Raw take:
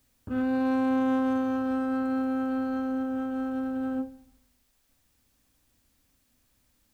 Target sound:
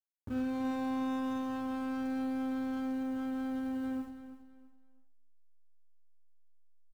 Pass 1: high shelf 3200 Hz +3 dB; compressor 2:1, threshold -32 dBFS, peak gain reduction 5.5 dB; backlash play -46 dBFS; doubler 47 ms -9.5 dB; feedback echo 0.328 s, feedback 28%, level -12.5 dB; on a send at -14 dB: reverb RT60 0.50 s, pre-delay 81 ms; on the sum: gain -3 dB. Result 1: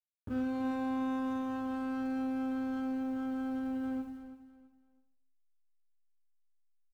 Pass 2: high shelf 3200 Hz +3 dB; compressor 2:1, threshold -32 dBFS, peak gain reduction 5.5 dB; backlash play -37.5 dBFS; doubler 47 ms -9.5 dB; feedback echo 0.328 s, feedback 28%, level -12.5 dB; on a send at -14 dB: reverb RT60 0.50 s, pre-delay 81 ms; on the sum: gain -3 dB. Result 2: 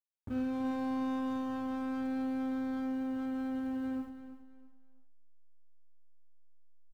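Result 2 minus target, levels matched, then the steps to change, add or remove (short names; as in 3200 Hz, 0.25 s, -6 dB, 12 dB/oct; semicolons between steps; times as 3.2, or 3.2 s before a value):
8000 Hz band -4.0 dB
change: high shelf 3200 Hz +10.5 dB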